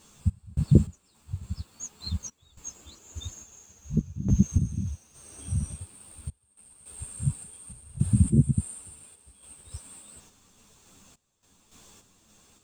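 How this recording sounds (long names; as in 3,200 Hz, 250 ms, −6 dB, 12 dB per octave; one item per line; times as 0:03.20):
a quantiser's noise floor 12 bits, dither triangular
sample-and-hold tremolo, depth 95%
a shimmering, thickened sound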